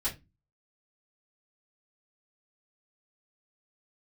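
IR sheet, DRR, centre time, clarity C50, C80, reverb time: -10.0 dB, 17 ms, 13.5 dB, 22.0 dB, 0.20 s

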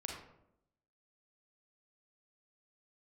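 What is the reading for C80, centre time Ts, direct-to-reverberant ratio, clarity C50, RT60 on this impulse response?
6.0 dB, 43 ms, -0.5 dB, 2.0 dB, 0.80 s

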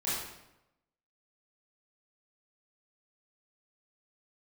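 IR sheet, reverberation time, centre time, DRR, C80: 0.90 s, 76 ms, -10.5 dB, 3.0 dB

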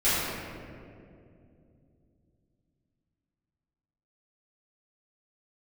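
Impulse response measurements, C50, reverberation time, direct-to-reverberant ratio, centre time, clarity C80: -3.5 dB, 2.5 s, -14.5 dB, 150 ms, -1.5 dB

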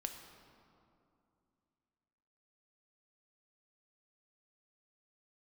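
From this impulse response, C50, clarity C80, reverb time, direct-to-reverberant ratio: 6.5 dB, 7.5 dB, 2.6 s, 4.5 dB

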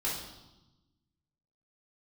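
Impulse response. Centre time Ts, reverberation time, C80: 51 ms, 1.0 s, 6.5 dB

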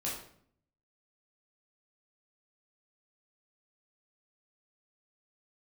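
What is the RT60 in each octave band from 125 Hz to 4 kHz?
0.90 s, 0.80 s, 0.65 s, 0.55 s, 0.50 s, 0.45 s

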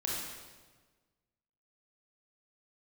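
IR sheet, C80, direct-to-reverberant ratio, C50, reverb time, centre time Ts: 1.5 dB, -4.5 dB, -1.0 dB, 1.4 s, 88 ms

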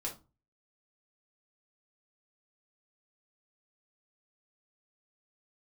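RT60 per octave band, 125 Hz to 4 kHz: 0.50 s, 0.35 s, 0.30 s, 0.30 s, 0.20 s, 0.20 s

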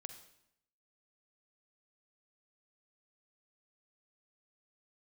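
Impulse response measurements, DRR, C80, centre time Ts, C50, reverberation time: 8.0 dB, 11.5 dB, 14 ms, 9.0 dB, 0.75 s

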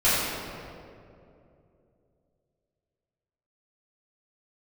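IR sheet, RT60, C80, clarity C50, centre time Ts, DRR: 2.7 s, -1.0 dB, -3.0 dB, 146 ms, -14.0 dB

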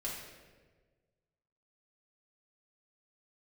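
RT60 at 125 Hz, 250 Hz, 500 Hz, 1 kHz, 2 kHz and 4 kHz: 1.9 s, 1.6 s, 1.7 s, 1.2 s, 1.2 s, 0.95 s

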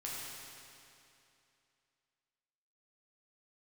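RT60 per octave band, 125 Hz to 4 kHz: 2.7 s, 2.7 s, 2.7 s, 2.7 s, 2.7 s, 2.5 s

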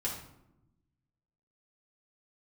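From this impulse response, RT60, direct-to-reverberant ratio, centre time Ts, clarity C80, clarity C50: 0.85 s, -5.5 dB, 33 ms, 8.5 dB, 5.0 dB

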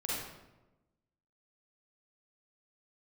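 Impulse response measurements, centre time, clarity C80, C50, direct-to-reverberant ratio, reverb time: 85 ms, 1.5 dB, -3.0 dB, -7.0 dB, 1.1 s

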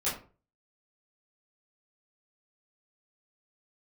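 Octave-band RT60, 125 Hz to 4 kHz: 0.50 s, 0.40 s, 0.40 s, 0.35 s, 0.30 s, 0.25 s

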